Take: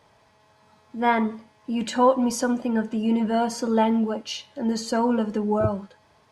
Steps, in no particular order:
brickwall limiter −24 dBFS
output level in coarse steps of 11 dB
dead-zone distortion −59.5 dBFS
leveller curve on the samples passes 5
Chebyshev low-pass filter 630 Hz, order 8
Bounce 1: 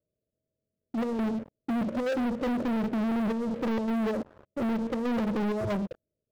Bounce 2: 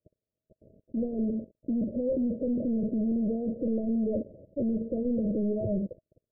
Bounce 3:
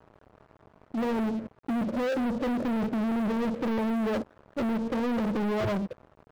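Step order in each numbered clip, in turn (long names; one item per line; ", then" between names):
brickwall limiter, then dead-zone distortion, then Chebyshev low-pass filter, then output level in coarse steps, then leveller curve on the samples
dead-zone distortion, then output level in coarse steps, then brickwall limiter, then leveller curve on the samples, then Chebyshev low-pass filter
Chebyshev low-pass filter, then brickwall limiter, then output level in coarse steps, then leveller curve on the samples, then dead-zone distortion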